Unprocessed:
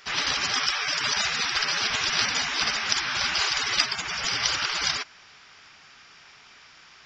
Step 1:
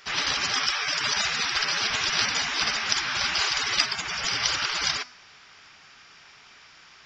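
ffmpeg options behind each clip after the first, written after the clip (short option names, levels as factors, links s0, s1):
-af "bandreject=f=247.6:t=h:w=4,bandreject=f=495.2:t=h:w=4,bandreject=f=742.8:t=h:w=4,bandreject=f=990.4:t=h:w=4,bandreject=f=1238:t=h:w=4,bandreject=f=1485.6:t=h:w=4,bandreject=f=1733.2:t=h:w=4,bandreject=f=1980.8:t=h:w=4,bandreject=f=2228.4:t=h:w=4,bandreject=f=2476:t=h:w=4,bandreject=f=2723.6:t=h:w=4,bandreject=f=2971.2:t=h:w=4,bandreject=f=3218.8:t=h:w=4,bandreject=f=3466.4:t=h:w=4,bandreject=f=3714:t=h:w=4,bandreject=f=3961.6:t=h:w=4,bandreject=f=4209.2:t=h:w=4,bandreject=f=4456.8:t=h:w=4,bandreject=f=4704.4:t=h:w=4,bandreject=f=4952:t=h:w=4,bandreject=f=5199.6:t=h:w=4,bandreject=f=5447.2:t=h:w=4,bandreject=f=5694.8:t=h:w=4,bandreject=f=5942.4:t=h:w=4,bandreject=f=6190:t=h:w=4,bandreject=f=6437.6:t=h:w=4,bandreject=f=6685.2:t=h:w=4,bandreject=f=6932.8:t=h:w=4,bandreject=f=7180.4:t=h:w=4,bandreject=f=7428:t=h:w=4,bandreject=f=7675.6:t=h:w=4,bandreject=f=7923.2:t=h:w=4,bandreject=f=8170.8:t=h:w=4,bandreject=f=8418.4:t=h:w=4"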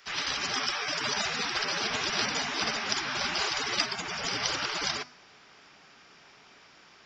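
-filter_complex "[0:a]bandreject=f=50:t=h:w=6,bandreject=f=100:t=h:w=6,bandreject=f=150:t=h:w=6,acrossover=split=150|750|2200[s0][s1][s2][s3];[s1]dynaudnorm=f=320:g=3:m=3.16[s4];[s0][s4][s2][s3]amix=inputs=4:normalize=0,volume=0.531"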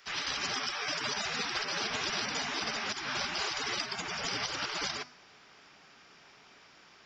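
-af "alimiter=limit=0.1:level=0:latency=1:release=172,volume=0.794"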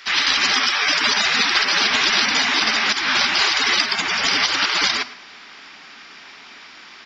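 -filter_complex "[0:a]equalizer=f=125:t=o:w=1:g=-9,equalizer=f=250:t=o:w=1:g=7,equalizer=f=500:t=o:w=1:g=-3,equalizer=f=1000:t=o:w=1:g=4,equalizer=f=2000:t=o:w=1:g=7,equalizer=f=4000:t=o:w=1:g=8,asplit=2[s0][s1];[s1]adelay=110,highpass=300,lowpass=3400,asoftclip=type=hard:threshold=0.0891,volume=0.158[s2];[s0][s2]amix=inputs=2:normalize=0,volume=2.82"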